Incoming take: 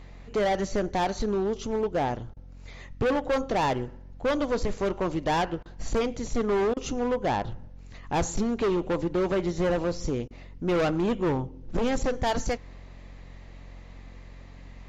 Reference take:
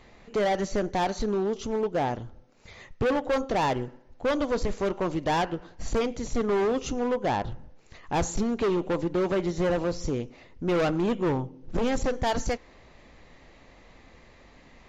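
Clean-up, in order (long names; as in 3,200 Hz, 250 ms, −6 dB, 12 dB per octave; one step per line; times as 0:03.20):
hum removal 45.1 Hz, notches 6
repair the gap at 0:02.34/0:05.63/0:06.74/0:10.28, 25 ms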